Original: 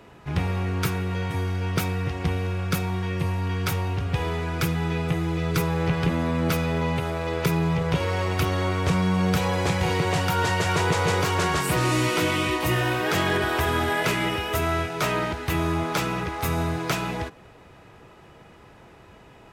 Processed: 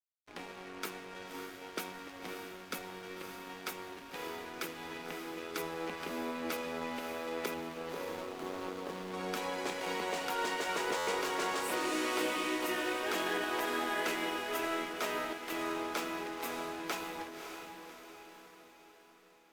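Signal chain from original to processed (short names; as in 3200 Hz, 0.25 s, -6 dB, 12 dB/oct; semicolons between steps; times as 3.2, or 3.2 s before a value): 7.54–9.14 median filter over 25 samples; steep high-pass 220 Hz 48 dB/oct; crossover distortion -37 dBFS; diffused feedback echo 0.574 s, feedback 52%, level -7 dB; stuck buffer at 10.97, samples 512, times 8; gain -9 dB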